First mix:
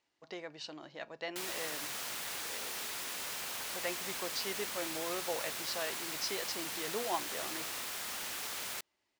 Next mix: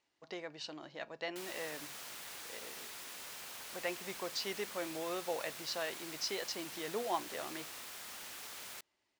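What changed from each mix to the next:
background -7.5 dB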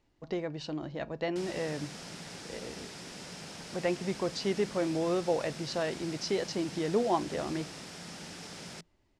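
background: add cabinet simulation 150–9200 Hz, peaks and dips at 170 Hz +9 dB, 1.1 kHz -5 dB, 5.2 kHz +7 dB; master: remove high-pass 1.4 kHz 6 dB/octave

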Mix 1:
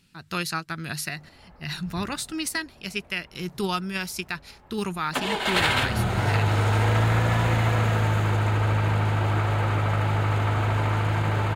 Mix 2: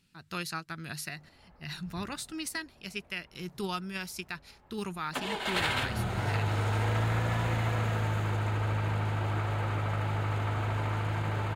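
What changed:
speech -7.5 dB; background -7.5 dB

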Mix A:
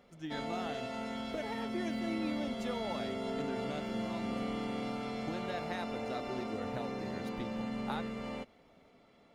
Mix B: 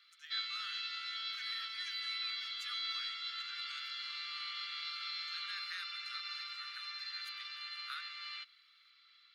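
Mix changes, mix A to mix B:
background: add resonant low-pass 4.2 kHz, resonance Q 6.3; master: add steep high-pass 1.2 kHz 96 dB/octave

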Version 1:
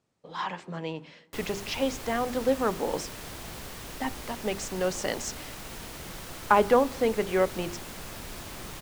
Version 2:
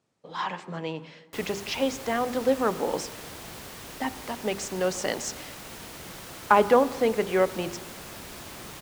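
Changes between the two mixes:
speech: send +9.0 dB; master: add high-pass 100 Hz 6 dB/octave

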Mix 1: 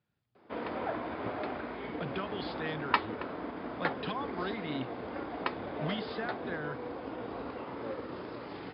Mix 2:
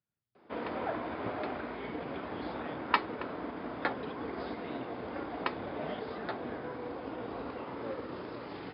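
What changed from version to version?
speech -11.5 dB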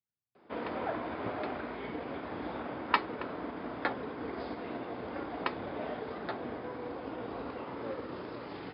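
speech -9.0 dB

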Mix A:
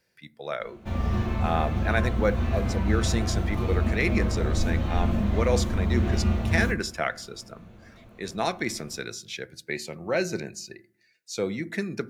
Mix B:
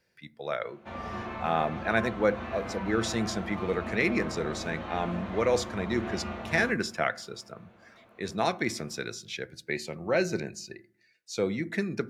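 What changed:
speech: add treble shelf 6.5 kHz -7 dB; background: add band-pass filter 1.2 kHz, Q 0.6

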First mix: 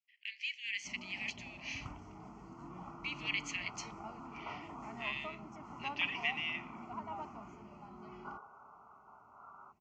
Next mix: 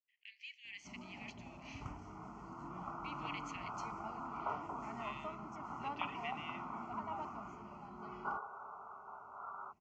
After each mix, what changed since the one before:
speech -11.5 dB; second sound +7.5 dB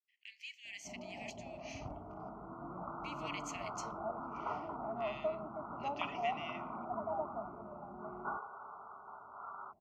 speech: remove distance through air 140 m; first sound: add resonant low-pass 650 Hz, resonance Q 4.8

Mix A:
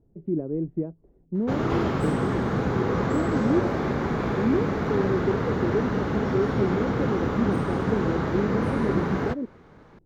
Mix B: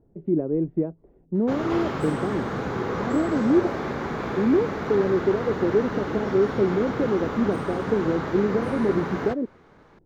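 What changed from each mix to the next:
speech +7.5 dB; master: add bass shelf 290 Hz -7.5 dB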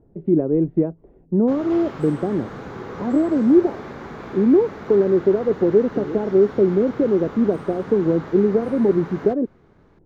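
speech +5.5 dB; background -6.0 dB

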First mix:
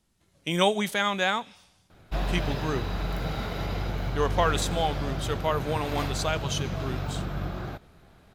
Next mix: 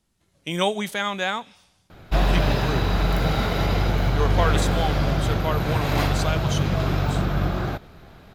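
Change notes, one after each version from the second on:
background +9.0 dB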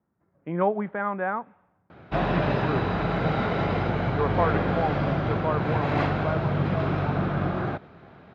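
speech: add low-pass 1.6 kHz 24 dB/octave; master: add band-pass 120–2200 Hz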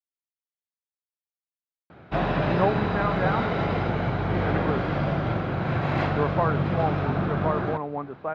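speech: entry +2.00 s

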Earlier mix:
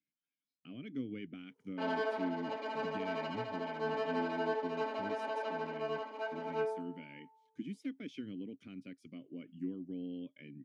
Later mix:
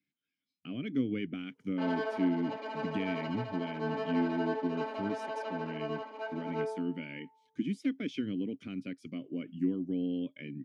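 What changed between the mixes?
speech +9.0 dB; master: add treble shelf 12 kHz -8.5 dB

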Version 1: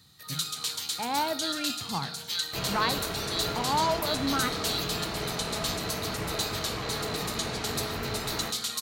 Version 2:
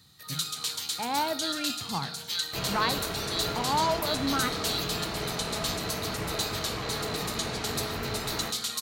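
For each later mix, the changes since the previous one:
no change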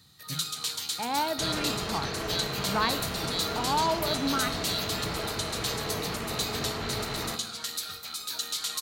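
second sound: entry -1.15 s

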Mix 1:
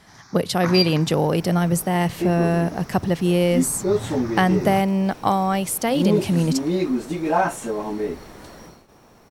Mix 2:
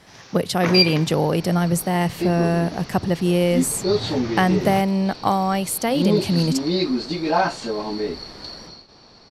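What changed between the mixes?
first sound: remove static phaser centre 1.2 kHz, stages 4; second sound: add resonant low-pass 4.5 kHz, resonance Q 14

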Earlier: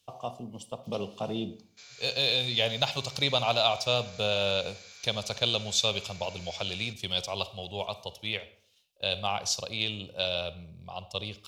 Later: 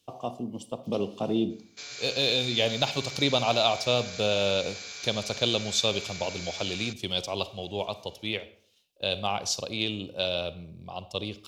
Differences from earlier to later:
background +9.5 dB; master: add peaking EQ 300 Hz +10.5 dB 1.1 oct

